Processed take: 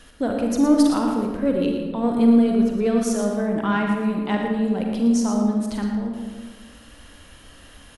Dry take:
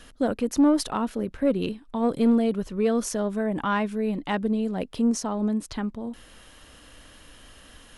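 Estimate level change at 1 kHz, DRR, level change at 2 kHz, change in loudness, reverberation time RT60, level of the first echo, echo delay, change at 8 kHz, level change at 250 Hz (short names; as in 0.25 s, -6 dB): +2.5 dB, 0.5 dB, +3.0 dB, +4.5 dB, 1.5 s, -9.0 dB, 0.115 s, +2.0 dB, +5.5 dB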